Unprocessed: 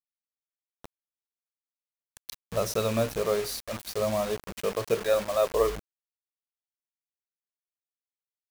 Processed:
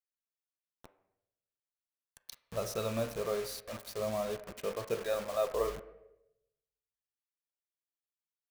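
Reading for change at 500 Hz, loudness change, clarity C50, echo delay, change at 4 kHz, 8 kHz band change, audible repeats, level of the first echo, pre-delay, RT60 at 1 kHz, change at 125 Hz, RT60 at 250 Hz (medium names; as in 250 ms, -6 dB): -7.5 dB, -7.5 dB, 13.5 dB, no echo, -8.0 dB, -8.0 dB, no echo, no echo, 6 ms, 0.75 s, -8.0 dB, 0.95 s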